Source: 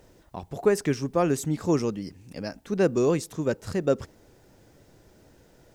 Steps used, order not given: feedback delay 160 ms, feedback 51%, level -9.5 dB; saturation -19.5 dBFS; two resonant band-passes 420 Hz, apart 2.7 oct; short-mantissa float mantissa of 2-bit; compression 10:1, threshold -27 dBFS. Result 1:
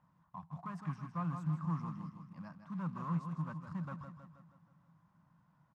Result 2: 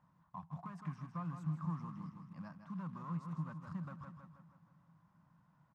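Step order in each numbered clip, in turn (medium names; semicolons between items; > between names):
feedback delay > saturation > short-mantissa float > two resonant band-passes > compression; saturation > feedback delay > compression > short-mantissa float > two resonant band-passes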